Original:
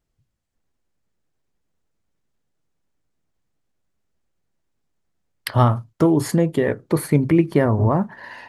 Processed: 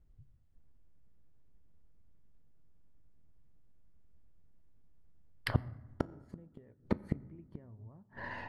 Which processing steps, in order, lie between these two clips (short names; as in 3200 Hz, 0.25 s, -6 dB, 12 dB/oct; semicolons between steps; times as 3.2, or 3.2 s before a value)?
RIAA curve playback; flipped gate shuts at -10 dBFS, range -41 dB; on a send: reverb RT60 1.2 s, pre-delay 6 ms, DRR 17 dB; on the sum: gain -4 dB